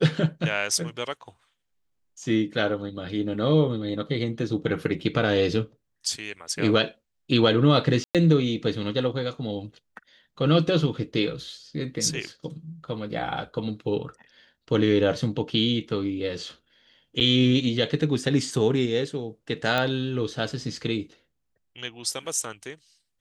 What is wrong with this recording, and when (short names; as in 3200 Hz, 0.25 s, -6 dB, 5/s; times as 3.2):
8.04–8.15 gap 0.107 s
17.2–17.21 gap 8.5 ms
19.78 pop -11 dBFS